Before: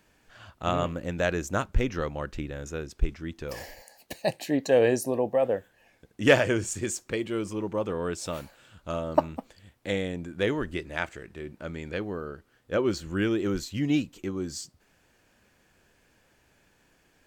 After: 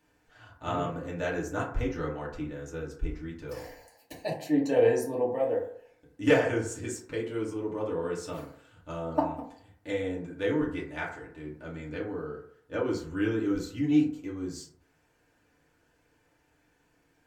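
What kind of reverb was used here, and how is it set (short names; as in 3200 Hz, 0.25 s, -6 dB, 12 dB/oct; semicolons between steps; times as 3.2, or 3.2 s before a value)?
FDN reverb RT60 0.61 s, low-frequency decay 0.8×, high-frequency decay 0.35×, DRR -5.5 dB; gain -10.5 dB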